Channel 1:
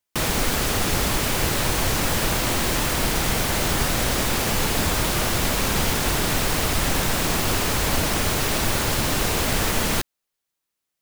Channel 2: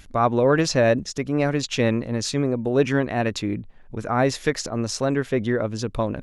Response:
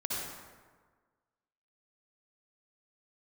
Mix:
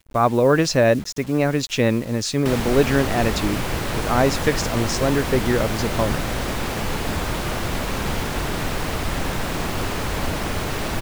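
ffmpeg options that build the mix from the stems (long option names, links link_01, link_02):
-filter_complex "[0:a]highshelf=frequency=3900:gain=-10,adelay=2300,volume=-1dB[link_01];[1:a]acrusher=bits=6:mix=0:aa=0.000001,volume=2dB[link_02];[link_01][link_02]amix=inputs=2:normalize=0,agate=range=-33dB:threshold=-32dB:ratio=3:detection=peak"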